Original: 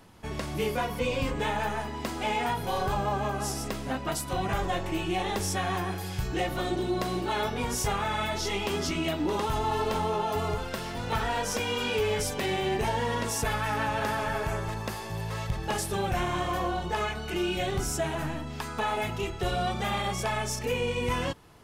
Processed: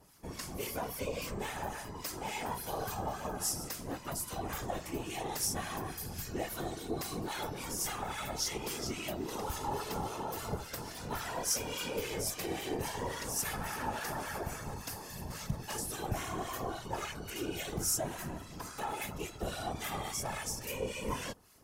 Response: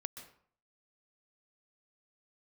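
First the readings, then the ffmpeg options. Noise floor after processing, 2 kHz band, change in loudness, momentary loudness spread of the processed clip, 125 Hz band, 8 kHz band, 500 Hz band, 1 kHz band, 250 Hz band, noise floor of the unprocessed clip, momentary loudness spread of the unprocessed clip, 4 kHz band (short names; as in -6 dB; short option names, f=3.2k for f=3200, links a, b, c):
-47 dBFS, -9.5 dB, -7.5 dB, 7 LU, -9.5 dB, 0.0 dB, -9.5 dB, -9.5 dB, -8.5 dB, -37 dBFS, 5 LU, -7.0 dB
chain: -filter_complex "[0:a]afftfilt=real='hypot(re,im)*cos(2*PI*random(0))':imag='hypot(re,im)*sin(2*PI*random(1))':win_size=512:overlap=0.75,acrossover=split=1200[a][b];[a]aeval=exprs='val(0)*(1-0.7/2+0.7/2*cos(2*PI*3.6*n/s))':c=same[c];[b]aeval=exprs='val(0)*(1-0.7/2-0.7/2*cos(2*PI*3.6*n/s))':c=same[d];[c][d]amix=inputs=2:normalize=0,aexciter=amount=2.9:drive=5.9:freq=4.8k"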